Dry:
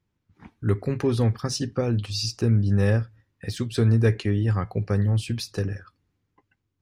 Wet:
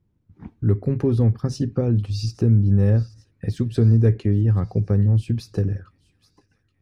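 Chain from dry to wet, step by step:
tilt shelving filter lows +8.5 dB, about 710 Hz
in parallel at +3 dB: downward compressor, threshold −24 dBFS, peak gain reduction 15 dB
on the sum: delay with a high-pass on its return 830 ms, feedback 59%, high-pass 2,500 Hz, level −19 dB
level −6 dB

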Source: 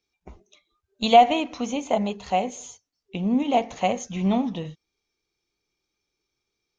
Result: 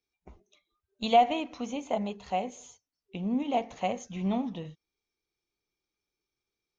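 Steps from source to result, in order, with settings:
high-shelf EQ 5,700 Hz −5 dB
level −7 dB

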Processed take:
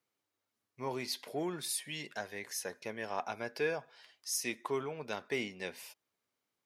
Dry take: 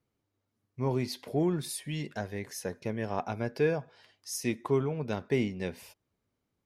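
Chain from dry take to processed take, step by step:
high-pass filter 1,100 Hz 6 dB per octave
in parallel at −11 dB: soft clipping −31 dBFS, distortion −14 dB

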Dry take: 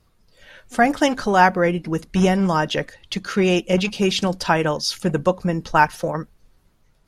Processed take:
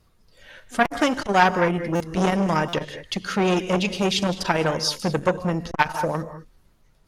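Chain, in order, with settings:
reverb whose tail is shaped and stops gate 230 ms rising, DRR 12 dB
buffer that repeats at 0:00.85/0:01.95/0:02.68, samples 256, times 8
saturating transformer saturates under 1,300 Hz

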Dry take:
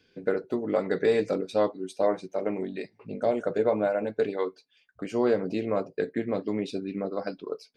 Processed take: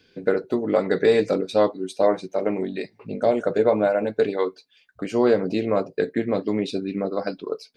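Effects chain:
parametric band 4,000 Hz +3.5 dB 0.31 octaves
level +5.5 dB

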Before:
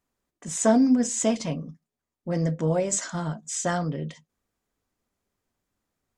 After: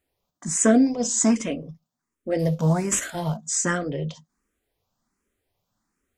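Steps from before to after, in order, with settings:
0:02.39–0:03.37: variable-slope delta modulation 64 kbit/s
frequency shifter mixed with the dry sound +1.3 Hz
level +6.5 dB

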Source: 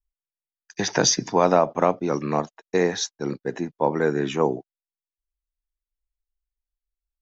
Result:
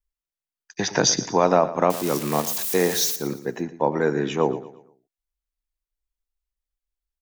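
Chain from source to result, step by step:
0:01.90–0:03.16: spike at every zero crossing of −18 dBFS
on a send: repeating echo 116 ms, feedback 39%, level −15 dB

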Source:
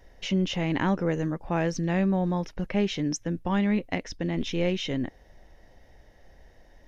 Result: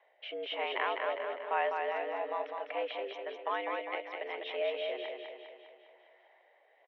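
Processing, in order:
rotating-speaker cabinet horn 1.1 Hz
single-sideband voice off tune +100 Hz 420–3,200 Hz
repeating echo 202 ms, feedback 54%, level −4.5 dB
level −1.5 dB

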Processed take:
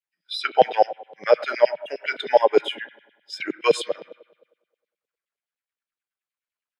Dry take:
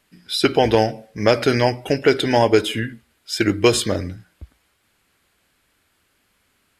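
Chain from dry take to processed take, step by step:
spring reverb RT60 1.7 s, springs 31 ms, chirp 70 ms, DRR 9 dB
auto-filter high-pass saw down 9.7 Hz 440–3,600 Hz
low shelf with overshoot 110 Hz −13 dB, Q 3
bit-depth reduction 10 bits, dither none
every bin expanded away from the loudest bin 1.5 to 1
level −1 dB

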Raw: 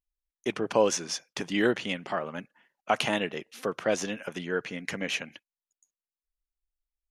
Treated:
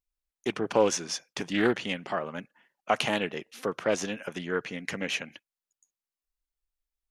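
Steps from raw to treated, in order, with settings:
highs frequency-modulated by the lows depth 0.18 ms

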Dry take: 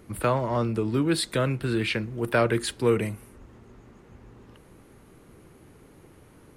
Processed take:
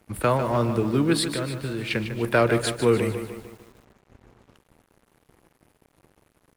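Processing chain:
0:01.25–0:01.91: downward compressor 2 to 1, threshold −34 dBFS, peak gain reduction 8 dB
slap from a distant wall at 49 metres, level −18 dB
dead-zone distortion −49.5 dBFS
feedback echo at a low word length 150 ms, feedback 55%, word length 8 bits, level −9.5 dB
level +2.5 dB

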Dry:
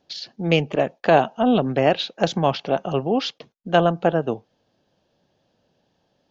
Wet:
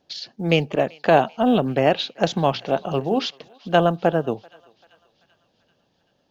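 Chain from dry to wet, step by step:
0:02.50–0:03.26: mains-hum notches 60/120/180/240/300/360/420 Hz
floating-point word with a short mantissa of 6 bits
feedback echo with a high-pass in the loop 388 ms, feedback 64%, high-pass 1,000 Hz, level −23 dB

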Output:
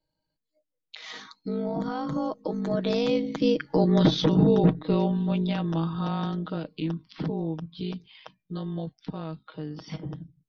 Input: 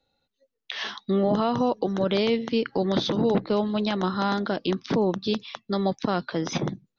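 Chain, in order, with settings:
source passing by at 0:02.70, 36 m/s, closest 17 metres
low-shelf EQ 290 Hz +9.5 dB
in parallel at −1 dB: downward compressor, threshold −39 dBFS, peak gain reduction 22.5 dB
on the sum: time stretch by overlap-add 1.5×, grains 38 ms

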